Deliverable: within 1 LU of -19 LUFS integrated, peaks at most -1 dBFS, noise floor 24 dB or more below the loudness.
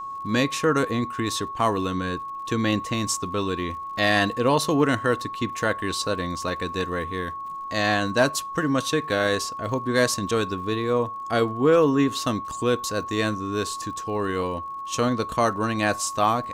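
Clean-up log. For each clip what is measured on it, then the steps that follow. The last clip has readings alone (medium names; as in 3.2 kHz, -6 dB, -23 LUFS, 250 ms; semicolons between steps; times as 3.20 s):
tick rate 57 per s; steady tone 1.1 kHz; tone level -31 dBFS; loudness -24.5 LUFS; peak level -8.0 dBFS; loudness target -19.0 LUFS
-> de-click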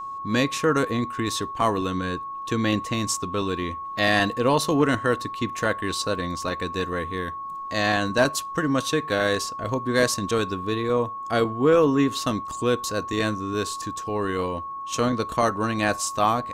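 tick rate 0.060 per s; steady tone 1.1 kHz; tone level -31 dBFS
-> band-stop 1.1 kHz, Q 30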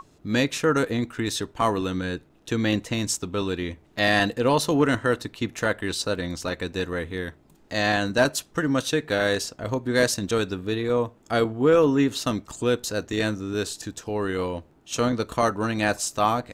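steady tone not found; loudness -25.0 LUFS; peak level -8.0 dBFS; loudness target -19.0 LUFS
-> trim +6 dB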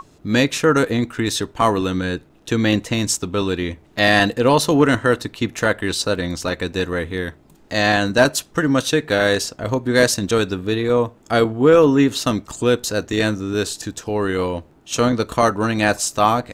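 loudness -19.0 LUFS; peak level -2.0 dBFS; noise floor -51 dBFS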